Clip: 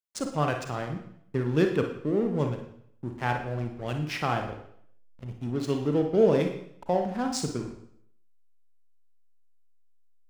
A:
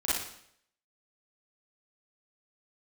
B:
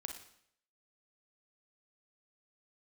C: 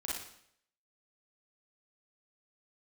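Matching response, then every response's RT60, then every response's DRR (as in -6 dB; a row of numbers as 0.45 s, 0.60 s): B; 0.65 s, 0.65 s, 0.65 s; -10.0 dB, 4.0 dB, -6.0 dB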